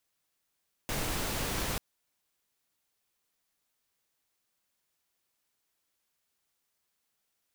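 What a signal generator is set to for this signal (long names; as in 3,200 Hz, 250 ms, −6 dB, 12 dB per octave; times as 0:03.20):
noise pink, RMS −33 dBFS 0.89 s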